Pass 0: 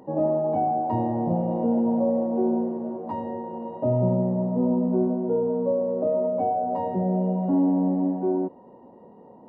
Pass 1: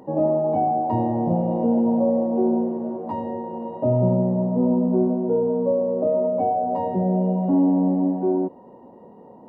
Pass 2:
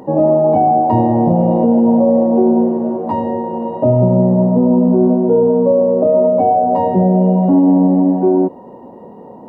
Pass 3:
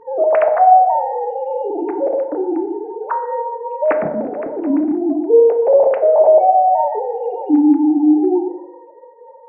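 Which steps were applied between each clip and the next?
dynamic equaliser 1,500 Hz, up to −4 dB, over −46 dBFS, Q 2.1; level +3 dB
boost into a limiter +13 dB; level −3 dB
three sine waves on the formant tracks; feedback delay network reverb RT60 0.86 s, low-frequency decay 1×, high-frequency decay 0.4×, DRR 6 dB; level −5 dB

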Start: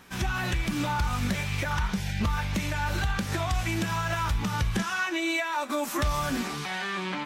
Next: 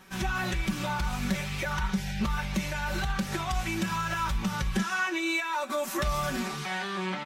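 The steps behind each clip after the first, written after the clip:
comb filter 5.3 ms, depth 68%
level −3 dB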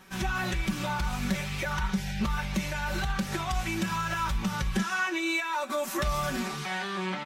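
no processing that can be heard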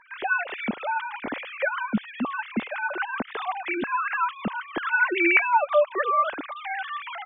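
three sine waves on the formant tracks
level +3.5 dB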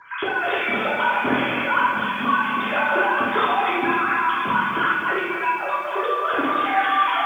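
compressor whose output falls as the input rises −31 dBFS, ratio −1
convolution reverb RT60 1.1 s, pre-delay 3 ms, DRR −6 dB
feedback echo at a low word length 252 ms, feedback 55%, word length 8 bits, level −7 dB
level −2 dB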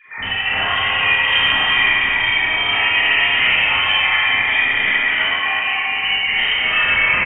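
voice inversion scrambler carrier 3,400 Hz
single-tap delay 368 ms −5 dB
four-comb reverb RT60 0.97 s, combs from 27 ms, DRR −5.5 dB
level −3 dB

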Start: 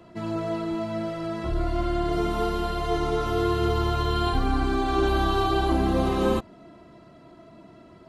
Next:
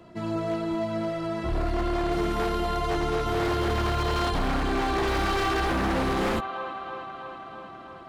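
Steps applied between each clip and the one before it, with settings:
delay with a band-pass on its return 325 ms, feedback 72%, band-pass 1,400 Hz, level −7 dB
wave folding −20 dBFS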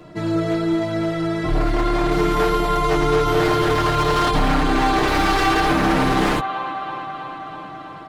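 comb filter 6.6 ms, depth 76%
level +6.5 dB

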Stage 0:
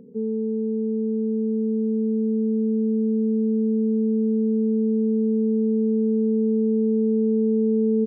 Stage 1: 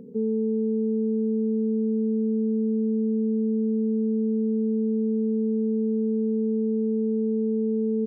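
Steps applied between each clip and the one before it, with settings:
brickwall limiter −21.5 dBFS, peak gain reduction 7.5 dB
level +3 dB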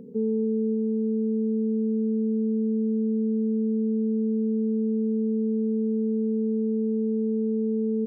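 feedback echo with a high-pass in the loop 295 ms, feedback 53%, level −6 dB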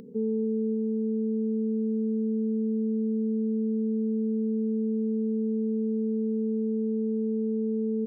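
upward compression, threshold −47 dBFS
level −2.5 dB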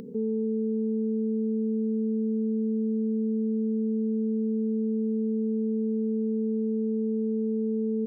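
brickwall limiter −26.5 dBFS, peak gain reduction 5.5 dB
level +5 dB

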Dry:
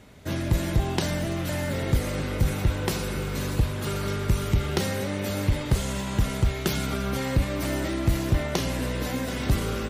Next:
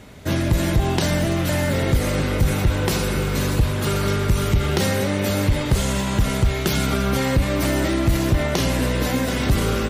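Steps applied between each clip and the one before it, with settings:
brickwall limiter −17.5 dBFS, peak gain reduction 4.5 dB
level +7.5 dB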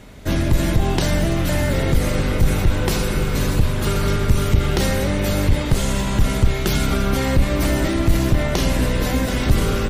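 sub-octave generator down 2 octaves, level 0 dB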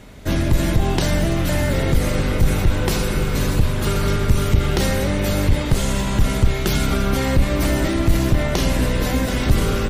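no processing that can be heard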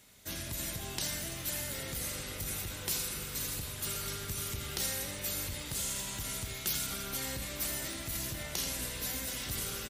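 high-pass filter 51 Hz
first-order pre-emphasis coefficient 0.9
single-tap delay 83 ms −9 dB
level −4.5 dB

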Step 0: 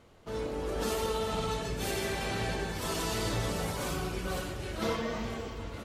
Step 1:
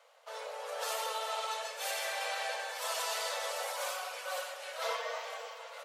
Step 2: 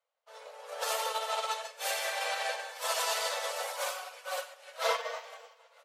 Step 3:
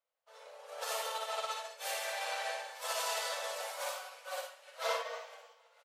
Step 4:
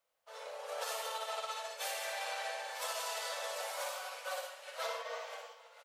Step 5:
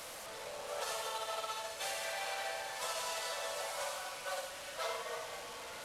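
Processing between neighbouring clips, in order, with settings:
Butterworth high-pass 490 Hz 96 dB per octave
expander for the loud parts 2.5 to 1, over −54 dBFS; level +7.5 dB
ambience of single reflections 56 ms −5 dB, 73 ms −9.5 dB; level −6 dB
downward compressor, threshold −44 dBFS, peak gain reduction 14 dB; level +7 dB
linear delta modulator 64 kbit/s, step −40.5 dBFS

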